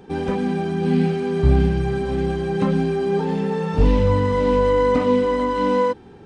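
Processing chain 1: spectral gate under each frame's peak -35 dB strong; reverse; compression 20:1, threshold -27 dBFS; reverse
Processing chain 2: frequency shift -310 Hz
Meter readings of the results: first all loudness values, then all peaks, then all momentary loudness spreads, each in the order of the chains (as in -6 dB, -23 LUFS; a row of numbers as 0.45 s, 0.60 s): -31.5 LUFS, -20.0 LUFS; -18.0 dBFS, -5.0 dBFS; 2 LU, 7 LU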